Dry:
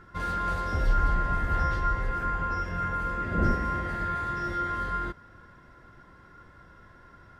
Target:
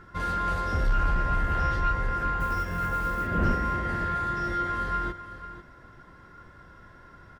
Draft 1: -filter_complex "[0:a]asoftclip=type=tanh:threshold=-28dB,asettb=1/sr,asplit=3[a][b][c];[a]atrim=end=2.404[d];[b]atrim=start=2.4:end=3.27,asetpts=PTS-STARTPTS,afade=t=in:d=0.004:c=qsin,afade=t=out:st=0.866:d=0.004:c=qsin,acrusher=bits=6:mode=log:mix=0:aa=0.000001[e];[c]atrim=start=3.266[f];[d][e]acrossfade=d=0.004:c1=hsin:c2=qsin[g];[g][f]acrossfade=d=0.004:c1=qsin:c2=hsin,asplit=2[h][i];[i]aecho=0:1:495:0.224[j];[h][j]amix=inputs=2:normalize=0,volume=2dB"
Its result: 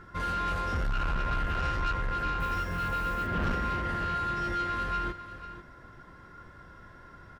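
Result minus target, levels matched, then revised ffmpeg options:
soft clip: distortion +9 dB
-filter_complex "[0:a]asoftclip=type=tanh:threshold=-18.5dB,asettb=1/sr,asplit=3[a][b][c];[a]atrim=end=2.404[d];[b]atrim=start=2.4:end=3.27,asetpts=PTS-STARTPTS,afade=t=in:d=0.004:c=qsin,afade=t=out:st=0.866:d=0.004:c=qsin,acrusher=bits=6:mode=log:mix=0:aa=0.000001[e];[c]atrim=start=3.266[f];[d][e]acrossfade=d=0.004:c1=hsin:c2=qsin[g];[g][f]acrossfade=d=0.004:c1=qsin:c2=hsin,asplit=2[h][i];[i]aecho=0:1:495:0.224[j];[h][j]amix=inputs=2:normalize=0,volume=2dB"

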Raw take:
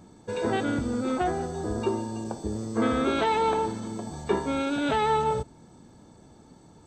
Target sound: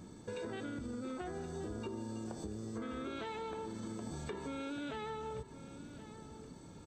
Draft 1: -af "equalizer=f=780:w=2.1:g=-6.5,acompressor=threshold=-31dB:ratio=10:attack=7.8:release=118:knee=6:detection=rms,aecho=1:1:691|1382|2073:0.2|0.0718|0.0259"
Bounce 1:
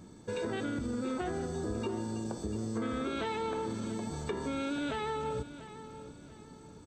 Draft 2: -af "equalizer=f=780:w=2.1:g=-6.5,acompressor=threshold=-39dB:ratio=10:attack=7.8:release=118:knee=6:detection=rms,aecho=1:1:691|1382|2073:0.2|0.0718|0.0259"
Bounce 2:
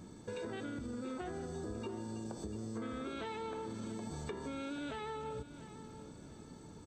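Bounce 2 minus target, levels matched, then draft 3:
echo 0.383 s early
-af "equalizer=f=780:w=2.1:g=-6.5,acompressor=threshold=-39dB:ratio=10:attack=7.8:release=118:knee=6:detection=rms,aecho=1:1:1074|2148|3222:0.2|0.0718|0.0259"

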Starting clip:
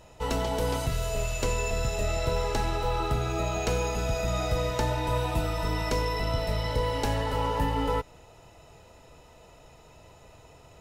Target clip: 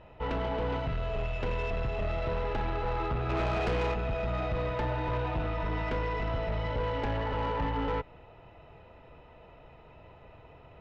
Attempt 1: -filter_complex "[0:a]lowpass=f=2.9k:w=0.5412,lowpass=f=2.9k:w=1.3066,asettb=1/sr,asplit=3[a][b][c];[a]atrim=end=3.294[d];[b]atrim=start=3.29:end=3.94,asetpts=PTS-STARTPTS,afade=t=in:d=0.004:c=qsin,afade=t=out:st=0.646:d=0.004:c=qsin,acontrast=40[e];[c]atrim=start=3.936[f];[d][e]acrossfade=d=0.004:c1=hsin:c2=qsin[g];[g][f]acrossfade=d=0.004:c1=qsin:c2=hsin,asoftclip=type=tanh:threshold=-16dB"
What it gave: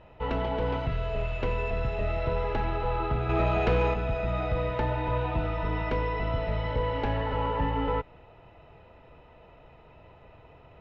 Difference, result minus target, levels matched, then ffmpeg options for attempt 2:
soft clip: distortion -11 dB
-filter_complex "[0:a]lowpass=f=2.9k:w=0.5412,lowpass=f=2.9k:w=1.3066,asettb=1/sr,asplit=3[a][b][c];[a]atrim=end=3.294[d];[b]atrim=start=3.29:end=3.94,asetpts=PTS-STARTPTS,afade=t=in:d=0.004:c=qsin,afade=t=out:st=0.646:d=0.004:c=qsin,acontrast=40[e];[c]atrim=start=3.936[f];[d][e]acrossfade=d=0.004:c1=hsin:c2=qsin[g];[g][f]acrossfade=d=0.004:c1=qsin:c2=hsin,asoftclip=type=tanh:threshold=-26dB"

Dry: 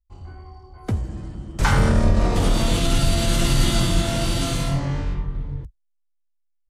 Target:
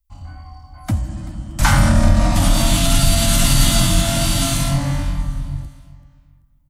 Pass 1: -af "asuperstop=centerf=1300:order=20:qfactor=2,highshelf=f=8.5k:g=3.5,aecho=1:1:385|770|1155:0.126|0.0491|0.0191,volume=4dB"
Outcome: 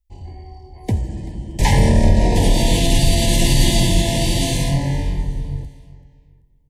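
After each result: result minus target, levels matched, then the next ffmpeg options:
500 Hz band +4.0 dB; 8000 Hz band -3.5 dB
-af "asuperstop=centerf=420:order=20:qfactor=2,highshelf=f=8.5k:g=3.5,aecho=1:1:385|770|1155:0.126|0.0491|0.0191,volume=4dB"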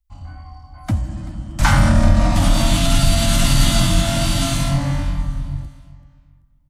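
8000 Hz band -3.5 dB
-af "asuperstop=centerf=420:order=20:qfactor=2,highshelf=f=8.5k:g=13,aecho=1:1:385|770|1155:0.126|0.0491|0.0191,volume=4dB"

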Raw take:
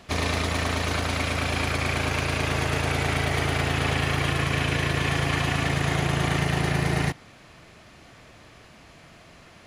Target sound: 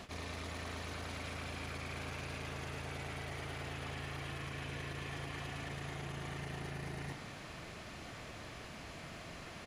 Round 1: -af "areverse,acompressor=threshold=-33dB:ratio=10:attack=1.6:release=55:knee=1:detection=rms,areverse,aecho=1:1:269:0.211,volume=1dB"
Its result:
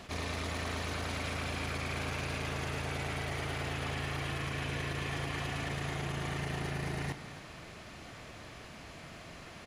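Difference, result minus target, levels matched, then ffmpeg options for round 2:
compressor: peak gain reduction -7 dB
-af "areverse,acompressor=threshold=-40.5dB:ratio=10:attack=1.6:release=55:knee=1:detection=rms,areverse,aecho=1:1:269:0.211,volume=1dB"

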